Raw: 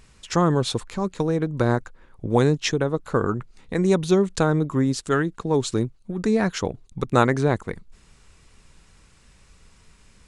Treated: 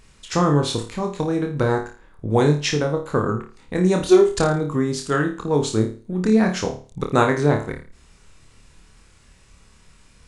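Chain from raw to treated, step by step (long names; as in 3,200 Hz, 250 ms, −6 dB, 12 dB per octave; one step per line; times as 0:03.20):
0:04.00–0:04.40: comb filter 2.9 ms, depth 94%
flutter between parallel walls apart 4.7 metres, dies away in 0.37 s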